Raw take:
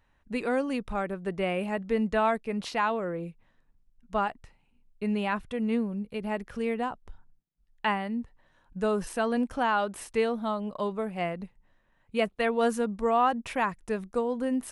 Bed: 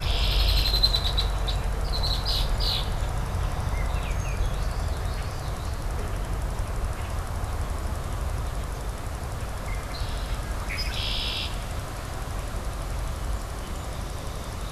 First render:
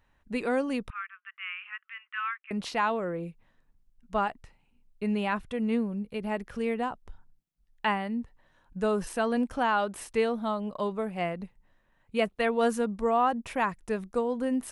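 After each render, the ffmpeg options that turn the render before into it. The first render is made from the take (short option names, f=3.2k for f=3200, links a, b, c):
-filter_complex "[0:a]asettb=1/sr,asplit=3[a][b][c];[a]atrim=end=0.904[d];[b]atrim=start=0.9:end=2.51,asetpts=PTS-STARTPTS,afade=t=in:d=0.004:c=qsin,afade=t=out:st=1.606:d=0.004:c=qsin,asuperpass=centerf=1900:order=12:qfactor=1[e];[c]atrim=start=2.506[f];[d][e]acrossfade=d=0.004:c1=hsin:c2=qsin[g];[g][f]acrossfade=d=0.004:c1=qsin:c2=hsin,asettb=1/sr,asplit=3[h][i][j];[h]atrim=end=13.034[k];[i]atrim=start=13.03:end=13.6,asetpts=PTS-STARTPTS,afade=t=in:d=0.004:c=qsin,afade=t=out:st=0.566:d=0.004:c=qsin,equalizer=f=3.2k:t=o:w=2.5:g=-3.5[l];[j]atrim=start=13.596[m];[k][l]acrossfade=d=0.004:c1=hsin:c2=qsin[n];[n][m]acrossfade=d=0.004:c1=qsin:c2=hsin"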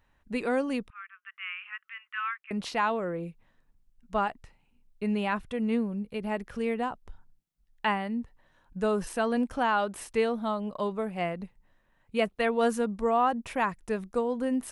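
-filter_complex "[0:a]asplit=2[a][b];[a]atrim=end=0.88,asetpts=PTS-STARTPTS,afade=t=out:st=0.876:d=0.004:c=hsin:silence=0.16788[c];[b]atrim=start=0.88,asetpts=PTS-STARTPTS,afade=t=in:d=0.55:c=qsin:silence=0.16788[d];[c][d]concat=n=2:v=0:a=1"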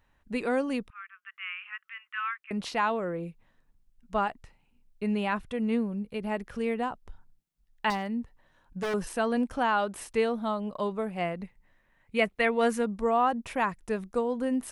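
-filter_complex "[0:a]asettb=1/sr,asplit=3[a][b][c];[a]atrim=end=7.904[d];[b]atrim=start=7.9:end=8.94,asetpts=PTS-STARTPTS,afade=t=in:d=0.004:c=qsin,afade=t=out:st=1.036:d=0.004:c=qsin,aeval=exprs='0.0596*(abs(mod(val(0)/0.0596+3,4)-2)-1)':c=same[e];[c]atrim=start=8.936[f];[d][e]acrossfade=d=0.004:c1=hsin:c2=qsin[g];[g][f]acrossfade=d=0.004:c1=qsin:c2=hsin,asettb=1/sr,asplit=3[h][i][j];[h]atrim=end=11.394[k];[i]atrim=start=11.39:end=12.83,asetpts=PTS-STARTPTS,afade=t=in:d=0.004:c=qsin,afade=t=out:st=1.436:d=0.004:c=qsin,equalizer=f=2.1k:w=3.2:g=8[l];[j]atrim=start=12.826[m];[k][l]acrossfade=d=0.004:c1=hsin:c2=qsin[n];[n][m]acrossfade=d=0.004:c1=qsin:c2=hsin"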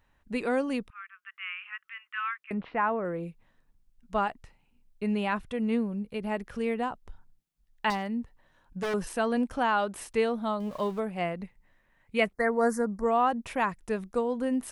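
-filter_complex "[0:a]asettb=1/sr,asplit=3[a][b][c];[a]atrim=end=2.544[d];[b]atrim=start=2.54:end=3.05,asetpts=PTS-STARTPTS,afade=t=in:d=0.004:c=qsin,afade=t=out:st=0.506:d=0.004:c=qsin,lowpass=f=2.1k:w=0.5412,lowpass=f=2.1k:w=1.3066[e];[c]atrim=start=3.046[f];[d][e]acrossfade=d=0.004:c1=hsin:c2=qsin[g];[g][f]acrossfade=d=0.004:c1=qsin:c2=hsin,asettb=1/sr,asplit=3[h][i][j];[h]atrim=end=10.604[k];[i]atrim=start=10.6:end=11,asetpts=PTS-STARTPTS,afade=t=in:d=0.004:c=qsin,afade=t=out:st=0.396:d=0.004:c=qsin,aeval=exprs='val(0)+0.5*0.00596*sgn(val(0))':c=same[l];[j]atrim=start=10.996[m];[k][l]acrossfade=d=0.004:c1=hsin:c2=qsin[n];[n][m]acrossfade=d=0.004:c1=qsin:c2=hsin,asettb=1/sr,asplit=3[o][p][q];[o]atrim=end=12.334[r];[p]atrim=start=12.33:end=13.04,asetpts=PTS-STARTPTS,afade=t=in:d=0.004:c=qsin,afade=t=out:st=0.706:d=0.004:c=qsin,asuperstop=centerf=3000:order=8:qfactor=1.1[s];[q]atrim=start=13.036[t];[r][s]acrossfade=d=0.004:c1=hsin:c2=qsin[u];[u][t]acrossfade=d=0.004:c1=qsin:c2=hsin"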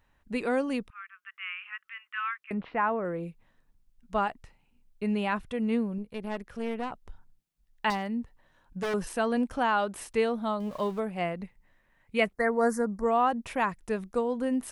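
-filter_complex "[0:a]asettb=1/sr,asplit=3[a][b][c];[a]atrim=end=5.984[d];[b]atrim=start=5.98:end=6.92,asetpts=PTS-STARTPTS,afade=t=in:d=0.004:c=qsin,afade=t=out:st=0.936:d=0.004:c=qsin,aeval=exprs='(tanh(20*val(0)+0.7)-tanh(0.7))/20':c=same[e];[c]atrim=start=6.916[f];[d][e]acrossfade=d=0.004:c1=hsin:c2=qsin[g];[g][f]acrossfade=d=0.004:c1=qsin:c2=hsin"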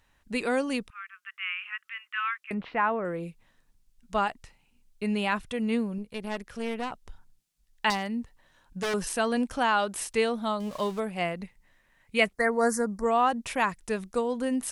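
-af "equalizer=f=7.2k:t=o:w=2.9:g=9"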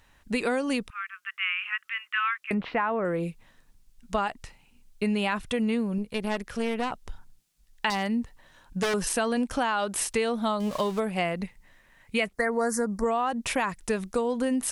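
-filter_complex "[0:a]asplit=2[a][b];[b]alimiter=limit=-19.5dB:level=0:latency=1,volume=1dB[c];[a][c]amix=inputs=2:normalize=0,acompressor=threshold=-23dB:ratio=6"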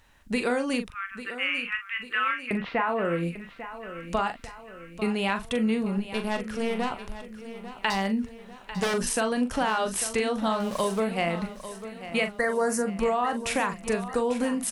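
-filter_complex "[0:a]asplit=2[a][b];[b]adelay=41,volume=-8.5dB[c];[a][c]amix=inputs=2:normalize=0,aecho=1:1:846|1692|2538|3384|4230:0.224|0.114|0.0582|0.0297|0.0151"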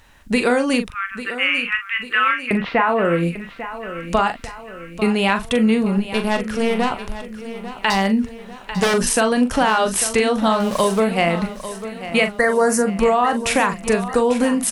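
-af "volume=9dB,alimiter=limit=-3dB:level=0:latency=1"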